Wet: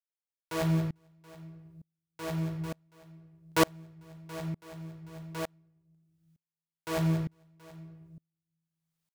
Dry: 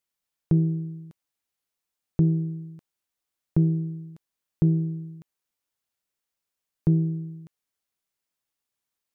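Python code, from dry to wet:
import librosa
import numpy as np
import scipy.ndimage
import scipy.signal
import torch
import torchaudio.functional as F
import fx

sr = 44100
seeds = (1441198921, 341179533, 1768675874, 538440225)

p1 = (np.mod(10.0 ** (18.0 / 20.0) * x + 1.0, 2.0) - 1.0) / 10.0 ** (18.0 / 20.0)
p2 = p1 + fx.echo_multitap(p1, sr, ms=(181, 446, 727), db=(-17.0, -20.0, -14.0), dry=0)
p3 = fx.room_shoebox(p2, sr, seeds[0], volume_m3=190.0, walls='mixed', distance_m=0.64)
y = fx.tremolo_decay(p3, sr, direction='swelling', hz=1.1, depth_db=34)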